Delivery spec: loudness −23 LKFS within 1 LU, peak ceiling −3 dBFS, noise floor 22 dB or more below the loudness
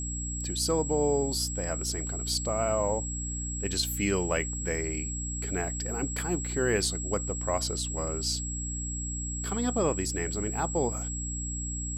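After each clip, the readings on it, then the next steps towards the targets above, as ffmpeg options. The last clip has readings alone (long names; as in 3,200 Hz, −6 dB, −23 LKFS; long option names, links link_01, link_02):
mains hum 60 Hz; hum harmonics up to 300 Hz; level of the hum −33 dBFS; interfering tone 7,700 Hz; level of the tone −35 dBFS; integrated loudness −30.0 LKFS; sample peak −14.0 dBFS; target loudness −23.0 LKFS
→ -af "bandreject=frequency=60:width_type=h:width=6,bandreject=frequency=120:width_type=h:width=6,bandreject=frequency=180:width_type=h:width=6,bandreject=frequency=240:width_type=h:width=6,bandreject=frequency=300:width_type=h:width=6"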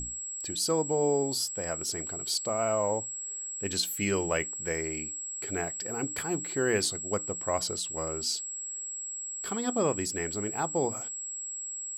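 mains hum none found; interfering tone 7,700 Hz; level of the tone −35 dBFS
→ -af "bandreject=frequency=7700:width=30"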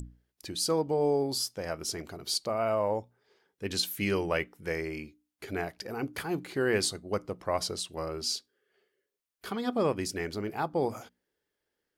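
interfering tone none found; integrated loudness −31.5 LKFS; sample peak −14.5 dBFS; target loudness −23.0 LKFS
→ -af "volume=8.5dB"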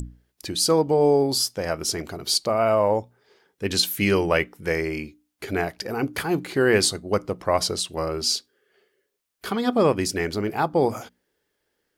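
integrated loudness −23.0 LKFS; sample peak −6.0 dBFS; background noise floor −76 dBFS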